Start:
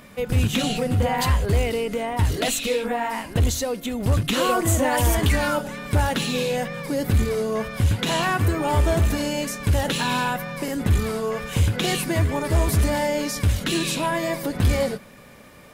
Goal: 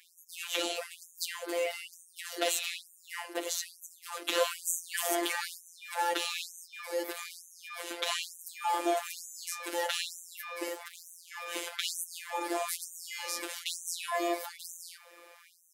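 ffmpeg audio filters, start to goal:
-filter_complex "[0:a]asettb=1/sr,asplit=3[a][b][c];[a]atrim=end=10.694[d];[b]atrim=start=10.69:end=11.28,asetpts=PTS-STARTPTS,afade=t=in:d=0.004:c=qsin,afade=t=out:st=0.586:d=0.004:c=qsin,volume=25.5dB,asoftclip=hard,volume=-25.5dB[e];[c]atrim=start=11.276[f];[d][e]acrossfade=d=0.004:c1=hsin:c2=qsin[g];[g][f]acrossfade=d=0.004:c1=qsin:c2=hsin,afftfilt=real='hypot(re,im)*cos(PI*b)':imag='0':win_size=1024:overlap=0.75,afftfilt=real='re*gte(b*sr/1024,250*pow(6000/250,0.5+0.5*sin(2*PI*1.1*pts/sr)))':imag='im*gte(b*sr/1024,250*pow(6000/250,0.5+0.5*sin(2*PI*1.1*pts/sr)))':win_size=1024:overlap=0.75,volume=-2.5dB"

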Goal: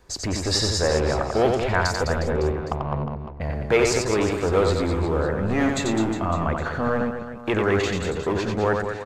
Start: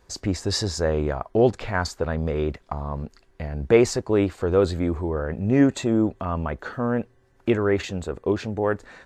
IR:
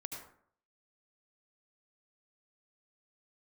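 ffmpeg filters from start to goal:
-filter_complex "[0:a]acrossover=split=550|2100[a][b][c];[a]asoftclip=type=hard:threshold=-27dB[d];[d][b][c]amix=inputs=3:normalize=0,asettb=1/sr,asplit=3[e][f][g];[e]atrim=end=2.244[h];[f]atrim=start=2.24:end=3.41,asetpts=PTS-STARTPTS,afade=t=in:d=0.004:c=qsin,afade=t=out:st=1.166:d=0.004:c=qsin,adynamicsmooth=sensitivity=1:basefreq=990[i];[g]atrim=start=3.406[j];[h][i]acrossfade=d=0.004:c1=hsin:c2=qsin[k];[k][j]acrossfade=d=0.004:c1=qsin:c2=hsin,aecho=1:1:90|207|359.1|556.8|813.9:0.631|0.398|0.251|0.158|0.1,volume=3dB"

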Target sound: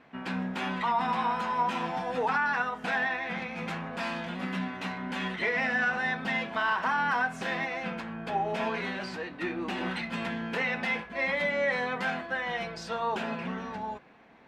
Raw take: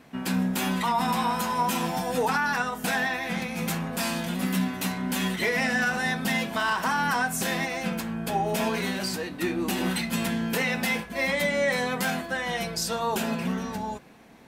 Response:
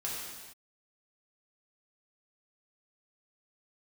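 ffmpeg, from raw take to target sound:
-af "lowpass=2.5k,lowshelf=f=430:g=-9.5"

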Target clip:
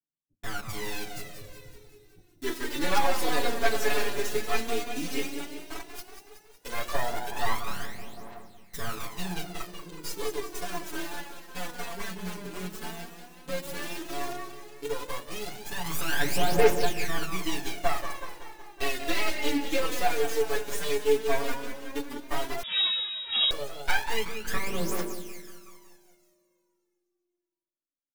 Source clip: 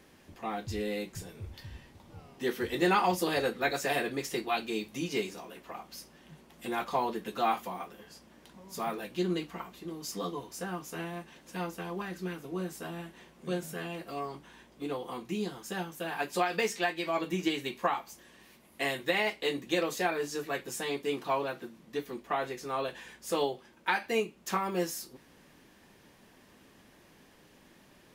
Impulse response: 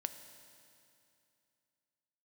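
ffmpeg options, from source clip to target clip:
-filter_complex "[0:a]asettb=1/sr,asplit=3[a][b][c];[a]atrim=end=15.854[d];[b]atrim=start=15.85:end=16.7,asetpts=PTS-STARTPTS,afade=t=in:d=0.004:c=qsin,afade=t=out:st=0.846:d=0.004:c=qsin,aeval=exprs='val(0)+0.5*0.0299*sgn(val(0))':c=same[e];[c]atrim=start=16.696[f];[d][e]acrossfade=d=0.004:c1=hsin:c2=qsin[g];[g][f]acrossfade=d=0.004:c1=qsin:c2=hsin,agate=range=-49dB:threshold=-46dB:ratio=16:detection=peak,equalizer=f=75:t=o:w=0.7:g=-14.5,acrossover=split=480[h][i];[h]flanger=delay=0.9:depth=2.3:regen=-58:speed=1.4:shape=triangular[j];[i]acrusher=bits=4:dc=4:mix=0:aa=0.000001[k];[j][k]amix=inputs=2:normalize=0,asoftclip=type=tanh:threshold=-18dB,aecho=1:1:186|372|558|744|930|1116|1302:0.355|0.213|0.128|0.0766|0.046|0.0276|0.0166,asplit=2[l][m];[1:a]atrim=start_sample=2205,adelay=7[n];[m][n]afir=irnorm=-1:irlink=0,volume=5dB[o];[l][o]amix=inputs=2:normalize=0,aphaser=in_gain=1:out_gain=1:delay=5:decay=0.66:speed=0.12:type=triangular,asettb=1/sr,asplit=3[p][q][r];[p]atrim=end=22.634[s];[q]atrim=start=22.63:end=23.51,asetpts=PTS-STARTPTS,afade=t=in:d=0.004:c=qsin,afade=t=out:st=0.876:d=0.004:c=qsin,lowpass=f=3.2k:t=q:w=0.5098,lowpass=f=3.2k:t=q:w=0.6013,lowpass=f=3.2k:t=q:w=0.9,lowpass=f=3.2k:t=q:w=2.563,afreqshift=-3800[t];[r]atrim=start=23.506[u];[s][t]acrossfade=d=0.004:c1=hsin:c2=qsin[v];[v][u]acrossfade=d=0.004:c1=qsin:c2=hsin,volume=-2dB"

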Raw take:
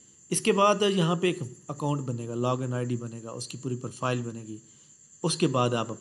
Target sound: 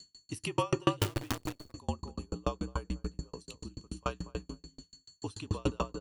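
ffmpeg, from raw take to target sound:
-filter_complex "[0:a]asplit=2[a][b];[b]adelay=236,lowpass=f=1.4k:p=1,volume=-4dB,asplit=2[c][d];[d]adelay=236,lowpass=f=1.4k:p=1,volume=0.15,asplit=2[e][f];[f]adelay=236,lowpass=f=1.4k:p=1,volume=0.15[g];[c][e][g]amix=inputs=3:normalize=0[h];[a][h]amix=inputs=2:normalize=0,afreqshift=-60,asplit=3[i][j][k];[i]afade=t=out:st=0.99:d=0.02[l];[j]acrusher=bits=5:dc=4:mix=0:aa=0.000001,afade=t=in:st=0.99:d=0.02,afade=t=out:st=1.72:d=0.02[m];[k]afade=t=in:st=1.72:d=0.02[n];[l][m][n]amix=inputs=3:normalize=0,aeval=exprs='val(0)+0.00447*sin(2*PI*4400*n/s)':c=same,aeval=exprs='val(0)*pow(10,-38*if(lt(mod(6.9*n/s,1),2*abs(6.9)/1000),1-mod(6.9*n/s,1)/(2*abs(6.9)/1000),(mod(6.9*n/s,1)-2*abs(6.9)/1000)/(1-2*abs(6.9)/1000))/20)':c=same"

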